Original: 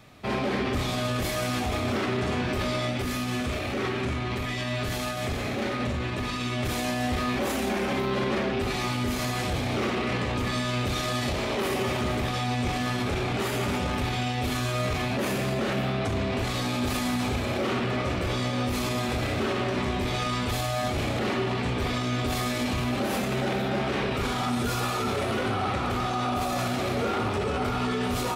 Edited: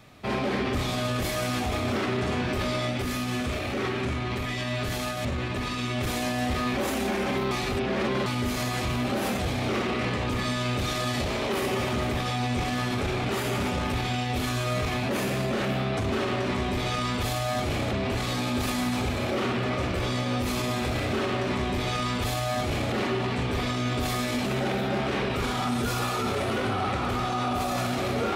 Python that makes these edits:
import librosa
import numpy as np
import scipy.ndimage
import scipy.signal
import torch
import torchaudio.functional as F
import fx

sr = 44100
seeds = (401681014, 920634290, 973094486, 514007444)

y = fx.edit(x, sr, fx.cut(start_s=5.25, length_s=0.62),
    fx.reverse_span(start_s=8.13, length_s=0.75),
    fx.duplicate(start_s=19.4, length_s=1.81, to_s=16.2),
    fx.move(start_s=22.73, length_s=0.54, to_s=9.47), tone=tone)